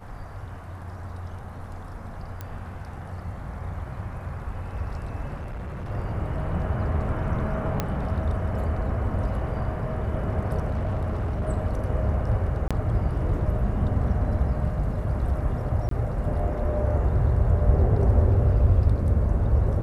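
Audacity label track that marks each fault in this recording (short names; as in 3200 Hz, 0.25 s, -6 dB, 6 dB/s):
2.410000	2.410000	pop -20 dBFS
5.350000	5.910000	clipped -30.5 dBFS
7.800000	7.800000	pop -11 dBFS
10.680000	11.490000	clipped -23 dBFS
12.680000	12.710000	gap 26 ms
15.890000	15.910000	gap 23 ms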